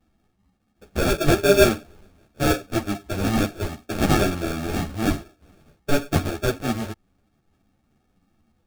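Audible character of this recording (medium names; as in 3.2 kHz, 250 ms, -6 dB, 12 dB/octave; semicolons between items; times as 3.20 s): aliases and images of a low sample rate 1 kHz, jitter 0%; a shimmering, thickened sound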